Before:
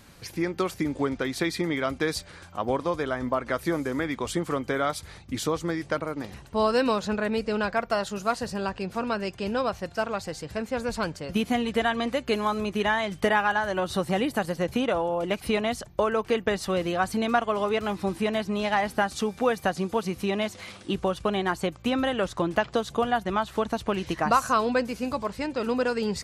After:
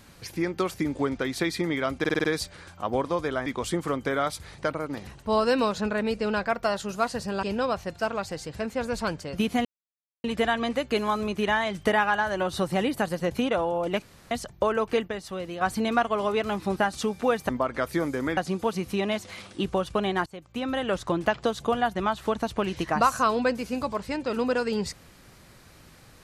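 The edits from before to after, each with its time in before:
1.99 s: stutter 0.05 s, 6 plays
3.21–4.09 s: move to 19.67 s
5.21–5.85 s: delete
8.70–9.39 s: delete
11.61 s: insert silence 0.59 s
15.39–15.68 s: room tone
16.45–16.98 s: gain -7.5 dB
18.13–18.94 s: delete
21.56–22.24 s: fade in, from -23 dB

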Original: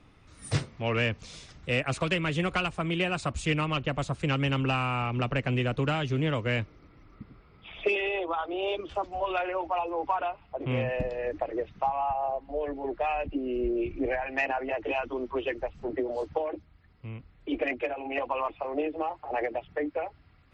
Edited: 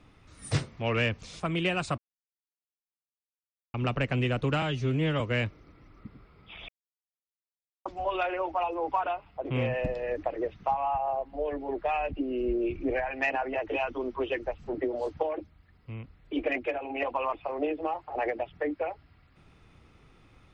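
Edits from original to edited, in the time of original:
1.40–2.75 s: delete
3.33–5.09 s: mute
5.97–6.36 s: stretch 1.5×
7.84–9.01 s: mute

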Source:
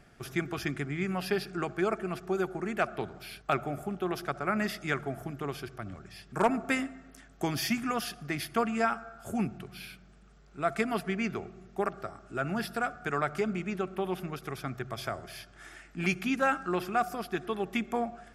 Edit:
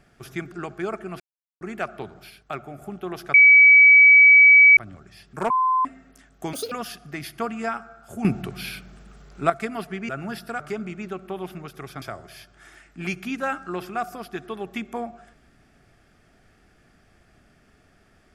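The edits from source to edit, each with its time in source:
0.52–1.51 s: delete
2.19–2.60 s: mute
3.29–3.81 s: gain -4 dB
4.33–5.76 s: bleep 2.28 kHz -8 dBFS
6.49–6.84 s: bleep 1.03 kHz -17 dBFS
7.52–7.88 s: speed 192%
9.41–10.66 s: gain +11 dB
11.25–12.36 s: delete
12.87–13.28 s: delete
14.70–15.01 s: delete

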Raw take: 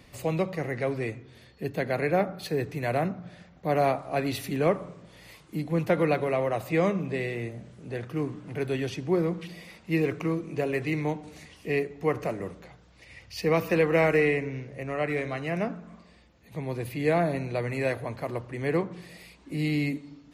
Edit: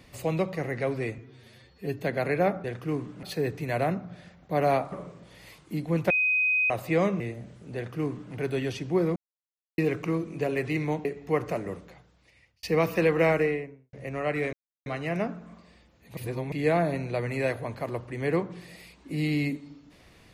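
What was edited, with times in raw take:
1.18–1.72 s: stretch 1.5×
4.06–4.74 s: delete
5.92–6.52 s: bleep 2.51 kHz -21 dBFS
7.02–7.37 s: delete
7.92–8.51 s: copy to 2.37 s
9.33–9.95 s: mute
11.22–11.79 s: delete
12.46–13.37 s: fade out
13.95–14.67 s: studio fade out
15.27 s: insert silence 0.33 s
16.58–16.93 s: reverse

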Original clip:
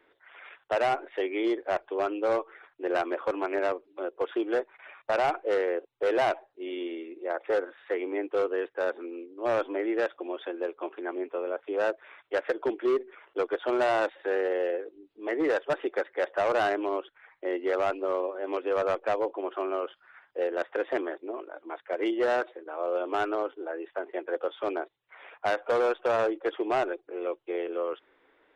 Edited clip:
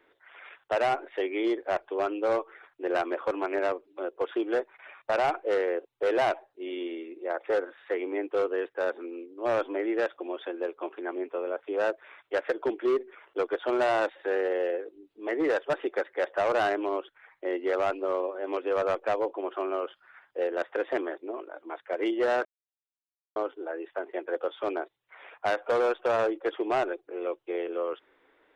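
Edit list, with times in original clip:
22.45–23.36 s: mute

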